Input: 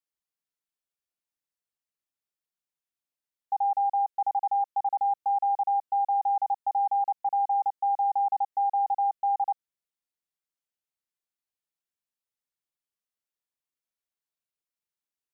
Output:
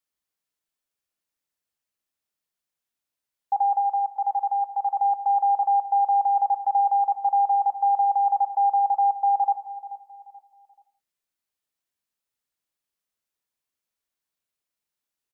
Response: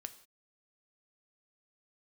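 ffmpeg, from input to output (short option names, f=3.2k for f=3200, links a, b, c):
-filter_complex "[0:a]asplit=3[a][b][c];[a]afade=t=out:st=3.8:d=0.02[d];[b]highpass=f=790:p=1,afade=t=in:st=3.8:d=0.02,afade=t=out:st=4.95:d=0.02[e];[c]afade=t=in:st=4.95:d=0.02[f];[d][e][f]amix=inputs=3:normalize=0,aecho=1:1:432|864|1296:0.158|0.0555|0.0194[g];[1:a]atrim=start_sample=2205[h];[g][h]afir=irnorm=-1:irlink=0,volume=9dB"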